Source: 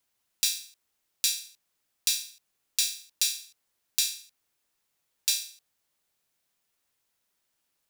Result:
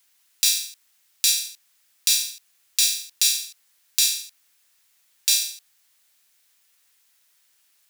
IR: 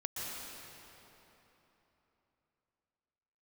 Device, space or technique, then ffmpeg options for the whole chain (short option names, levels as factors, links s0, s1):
mastering chain: -af "equalizer=f=1800:t=o:w=0.77:g=2.5,acompressor=threshold=0.0447:ratio=2.5,asoftclip=type=tanh:threshold=0.447,tiltshelf=f=1100:g=-7.5,asoftclip=type=hard:threshold=0.708,alimiter=level_in=2.51:limit=0.891:release=50:level=0:latency=1,volume=0.891"